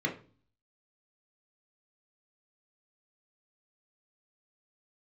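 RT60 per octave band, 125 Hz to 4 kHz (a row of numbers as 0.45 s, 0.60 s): 0.70 s, 0.55 s, 0.40 s, 0.35 s, 0.35 s, 0.35 s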